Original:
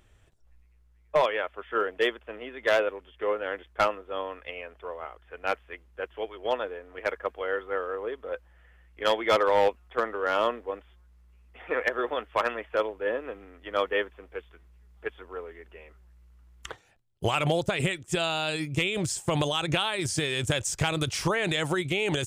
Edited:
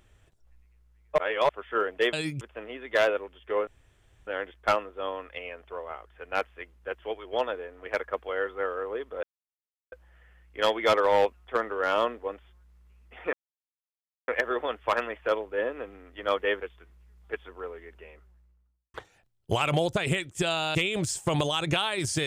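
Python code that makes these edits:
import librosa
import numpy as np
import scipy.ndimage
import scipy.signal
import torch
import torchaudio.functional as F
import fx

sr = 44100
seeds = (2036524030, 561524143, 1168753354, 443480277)

y = fx.studio_fade_out(x, sr, start_s=15.72, length_s=0.95)
y = fx.edit(y, sr, fx.reverse_span(start_s=1.18, length_s=0.31),
    fx.insert_room_tone(at_s=3.39, length_s=0.6),
    fx.insert_silence(at_s=8.35, length_s=0.69),
    fx.insert_silence(at_s=11.76, length_s=0.95),
    fx.cut(start_s=14.09, length_s=0.25),
    fx.move(start_s=18.48, length_s=0.28, to_s=2.13), tone=tone)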